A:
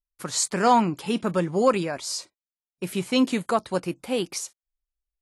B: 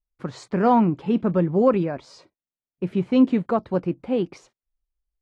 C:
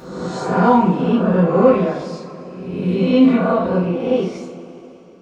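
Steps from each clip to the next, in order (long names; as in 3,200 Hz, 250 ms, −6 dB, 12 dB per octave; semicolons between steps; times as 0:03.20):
low-pass filter 2,800 Hz 12 dB per octave; tilt shelving filter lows +6.5 dB, about 720 Hz
peak hold with a rise ahead of every peak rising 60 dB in 1.09 s; coupled-rooms reverb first 0.37 s, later 3.6 s, from −20 dB, DRR −6 dB; level −4 dB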